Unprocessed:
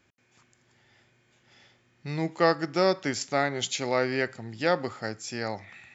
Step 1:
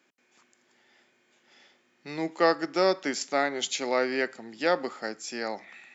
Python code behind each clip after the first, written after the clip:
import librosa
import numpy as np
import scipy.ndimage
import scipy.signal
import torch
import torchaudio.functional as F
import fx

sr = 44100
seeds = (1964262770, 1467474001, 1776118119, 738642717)

y = scipy.signal.sosfilt(scipy.signal.butter(4, 220.0, 'highpass', fs=sr, output='sos'), x)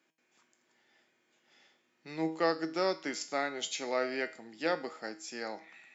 y = fx.comb_fb(x, sr, f0_hz=160.0, decay_s=0.43, harmonics='all', damping=0.0, mix_pct=70)
y = F.gain(torch.from_numpy(y), 2.0).numpy()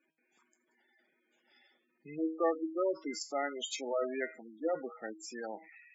y = fx.spec_gate(x, sr, threshold_db=-10, keep='strong')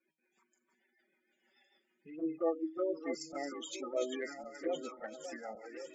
y = fx.reverse_delay_fb(x, sr, ms=555, feedback_pct=60, wet_db=-7)
y = fx.env_flanger(y, sr, rest_ms=5.4, full_db=-28.5)
y = fx.rotary(y, sr, hz=6.7)
y = F.gain(torch.from_numpy(y), 1.0).numpy()